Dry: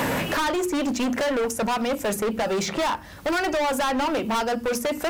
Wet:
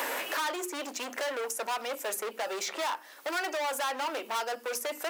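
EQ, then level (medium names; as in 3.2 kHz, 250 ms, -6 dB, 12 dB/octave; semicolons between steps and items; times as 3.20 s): high-pass 320 Hz 24 dB/octave; tilt EQ +4 dB/octave; treble shelf 2.5 kHz -11 dB; -5.5 dB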